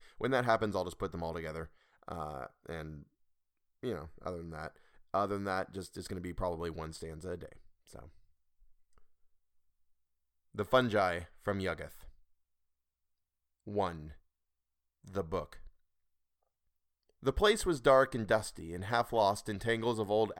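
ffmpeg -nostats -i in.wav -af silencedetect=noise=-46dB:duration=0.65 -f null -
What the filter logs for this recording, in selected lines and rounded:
silence_start: 3.03
silence_end: 3.83 | silence_duration: 0.80
silence_start: 8.06
silence_end: 10.55 | silence_duration: 2.49
silence_start: 12.09
silence_end: 13.67 | silence_duration: 1.58
silence_start: 14.13
silence_end: 15.07 | silence_duration: 0.94
silence_start: 15.67
silence_end: 17.23 | silence_duration: 1.56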